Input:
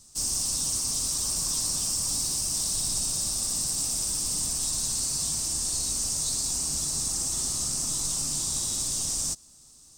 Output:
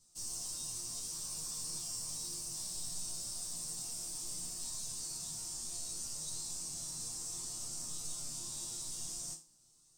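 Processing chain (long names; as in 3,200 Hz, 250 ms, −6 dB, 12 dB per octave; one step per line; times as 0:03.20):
resonators tuned to a chord A#2 sus4, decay 0.32 s
level +1 dB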